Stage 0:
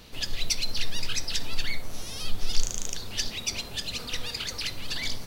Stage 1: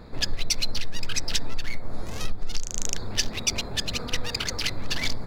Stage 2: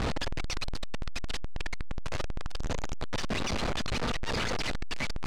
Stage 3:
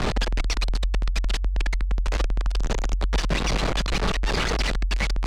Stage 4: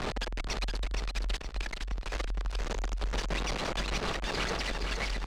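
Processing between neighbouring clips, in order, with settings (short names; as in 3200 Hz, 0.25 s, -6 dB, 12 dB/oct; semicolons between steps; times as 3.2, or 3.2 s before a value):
Wiener smoothing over 15 samples; compressor 16:1, threshold -25 dBFS, peak gain reduction 14 dB; gain +7.5 dB
infinite clipping; air absorption 97 m; gain -6 dB
frequency shift -51 Hz; gain +6.5 dB
tone controls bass -5 dB, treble -1 dB; on a send: feedback echo 0.468 s, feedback 41%, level -5 dB; on the sum: gain -7.5 dB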